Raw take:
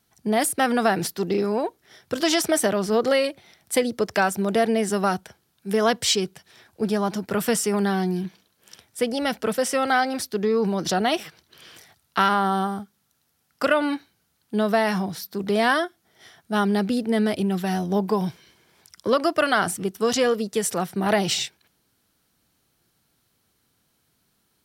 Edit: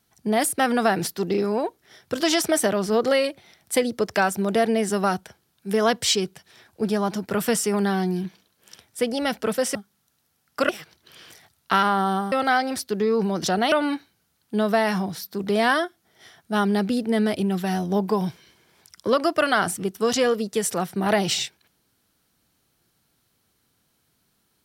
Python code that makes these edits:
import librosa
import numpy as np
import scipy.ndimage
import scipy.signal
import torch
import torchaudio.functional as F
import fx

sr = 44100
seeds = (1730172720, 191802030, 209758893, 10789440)

y = fx.edit(x, sr, fx.swap(start_s=9.75, length_s=1.4, other_s=12.78, other_length_s=0.94), tone=tone)